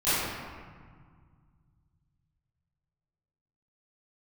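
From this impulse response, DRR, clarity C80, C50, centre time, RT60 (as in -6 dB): -19.0 dB, -1.5 dB, -5.5 dB, 137 ms, 1.8 s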